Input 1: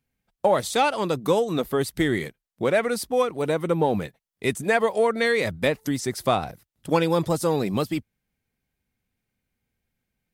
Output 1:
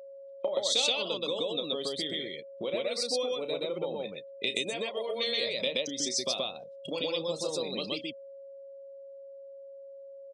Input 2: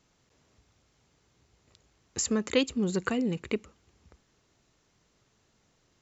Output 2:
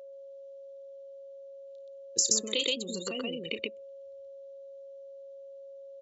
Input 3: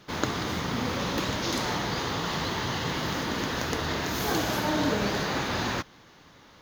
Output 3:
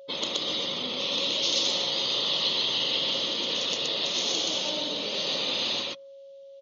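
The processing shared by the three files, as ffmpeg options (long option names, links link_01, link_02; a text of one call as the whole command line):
ffmpeg -i in.wav -af "afftdn=noise_reduction=31:noise_floor=-38,acompressor=threshold=-35dB:ratio=20,aexciter=amount=9.9:drive=3.6:freq=2400,highpass=240,equalizer=frequency=550:width_type=q:width=4:gain=9,equalizer=frequency=810:width_type=q:width=4:gain=-4,equalizer=frequency=1600:width_type=q:width=4:gain=-9,equalizer=frequency=2200:width_type=q:width=4:gain=-5,equalizer=frequency=3200:width_type=q:width=4:gain=3,equalizer=frequency=4900:width_type=q:width=4:gain=-6,lowpass=frequency=5600:width=0.5412,lowpass=frequency=5600:width=1.3066,aecho=1:1:32.07|125.4:0.316|1,aeval=exprs='val(0)+0.00631*sin(2*PI*550*n/s)':channel_layout=same" out.wav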